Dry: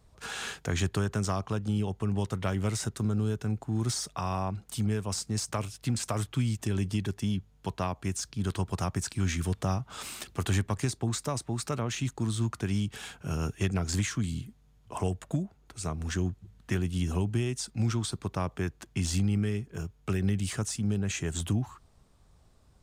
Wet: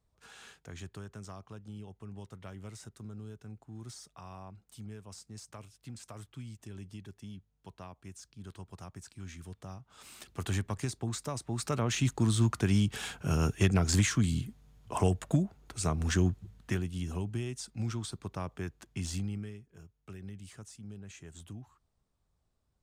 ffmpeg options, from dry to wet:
ffmpeg -i in.wav -af "volume=3dB,afade=type=in:start_time=9.95:duration=0.54:silence=0.281838,afade=type=in:start_time=11.39:duration=0.66:silence=0.398107,afade=type=out:start_time=16.38:duration=0.51:silence=0.334965,afade=type=out:start_time=19.1:duration=0.5:silence=0.298538" out.wav

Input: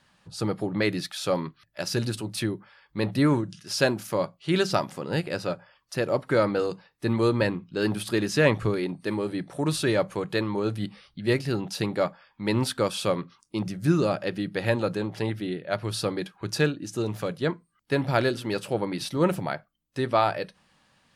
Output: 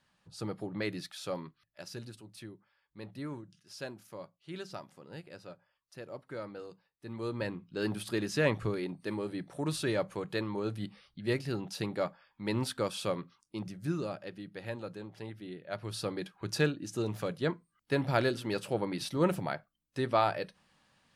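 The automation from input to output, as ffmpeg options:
ffmpeg -i in.wav -af "volume=11.5dB,afade=type=out:start_time=1.09:duration=1.08:silence=0.354813,afade=type=in:start_time=7.06:duration=0.73:silence=0.266073,afade=type=out:start_time=13.04:duration=1.33:silence=0.421697,afade=type=in:start_time=15.36:duration=1.18:silence=0.316228" out.wav

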